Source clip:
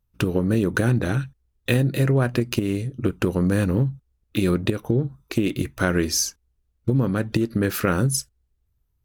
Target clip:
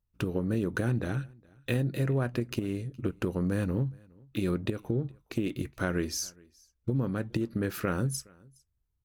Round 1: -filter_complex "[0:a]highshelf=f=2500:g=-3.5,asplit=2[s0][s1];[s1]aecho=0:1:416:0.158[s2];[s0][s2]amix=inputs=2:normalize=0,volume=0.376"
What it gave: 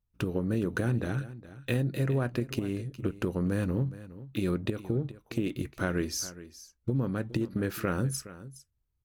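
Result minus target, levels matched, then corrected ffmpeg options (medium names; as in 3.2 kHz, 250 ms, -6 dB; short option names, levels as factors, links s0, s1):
echo-to-direct +11 dB
-filter_complex "[0:a]highshelf=f=2500:g=-3.5,asplit=2[s0][s1];[s1]aecho=0:1:416:0.0447[s2];[s0][s2]amix=inputs=2:normalize=0,volume=0.376"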